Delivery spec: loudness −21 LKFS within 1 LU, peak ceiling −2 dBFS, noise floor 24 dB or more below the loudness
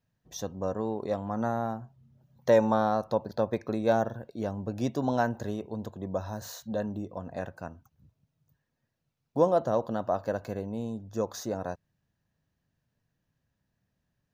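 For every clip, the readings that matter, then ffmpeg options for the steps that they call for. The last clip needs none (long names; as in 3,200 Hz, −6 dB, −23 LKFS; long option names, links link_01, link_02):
integrated loudness −30.5 LKFS; sample peak −10.0 dBFS; target loudness −21.0 LKFS
→ -af "volume=9.5dB,alimiter=limit=-2dB:level=0:latency=1"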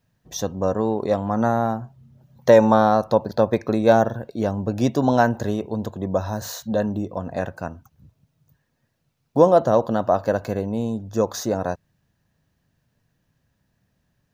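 integrated loudness −21.5 LKFS; sample peak −2.0 dBFS; background noise floor −71 dBFS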